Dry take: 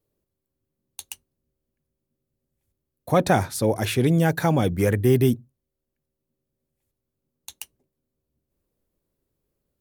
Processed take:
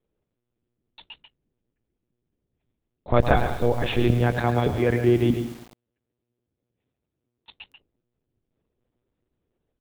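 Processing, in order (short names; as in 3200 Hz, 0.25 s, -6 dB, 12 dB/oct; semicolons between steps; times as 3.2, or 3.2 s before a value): echo 0.138 s -9 dB; monotone LPC vocoder at 8 kHz 120 Hz; 4.07–7.58 HPF 61 Hz 12 dB/oct; lo-fi delay 0.107 s, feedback 55%, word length 6-bit, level -11 dB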